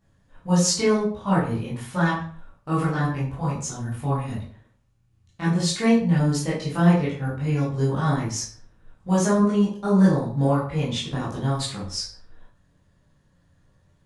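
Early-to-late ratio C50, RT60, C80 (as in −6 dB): 4.5 dB, 0.50 s, 9.5 dB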